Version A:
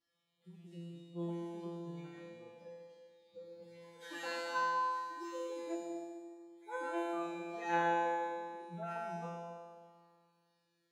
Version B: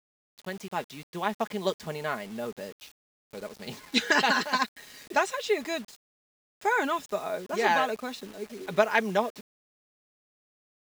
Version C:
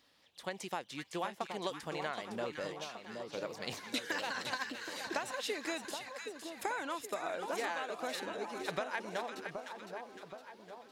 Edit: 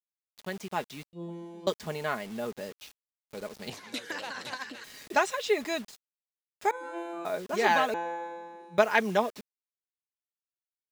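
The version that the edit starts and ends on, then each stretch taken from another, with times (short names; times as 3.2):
B
1.13–1.67 from A
3.7–4.84 from C
6.71–7.25 from A
7.94–8.78 from A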